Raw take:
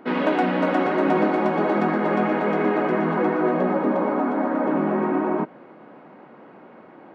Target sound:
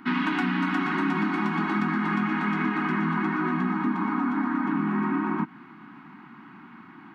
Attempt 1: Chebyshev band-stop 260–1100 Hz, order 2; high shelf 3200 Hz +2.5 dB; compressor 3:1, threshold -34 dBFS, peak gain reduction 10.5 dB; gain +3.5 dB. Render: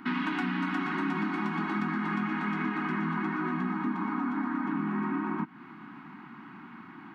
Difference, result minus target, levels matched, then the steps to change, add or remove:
compressor: peak gain reduction +5 dB
change: compressor 3:1, threshold -26.5 dBFS, peak gain reduction 5.5 dB

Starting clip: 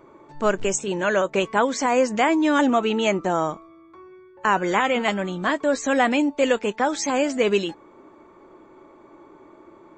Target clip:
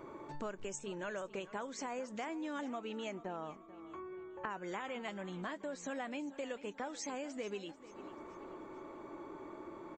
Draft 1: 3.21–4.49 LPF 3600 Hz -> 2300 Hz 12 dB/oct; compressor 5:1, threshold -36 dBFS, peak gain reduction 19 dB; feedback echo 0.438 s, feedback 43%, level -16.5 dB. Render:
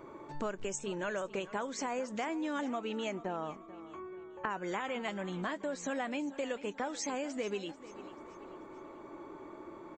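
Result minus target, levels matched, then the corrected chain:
compressor: peak gain reduction -5 dB
3.21–4.49 LPF 3600 Hz -> 2300 Hz 12 dB/oct; compressor 5:1, threshold -42.5 dBFS, peak gain reduction 24 dB; feedback echo 0.438 s, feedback 43%, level -16.5 dB

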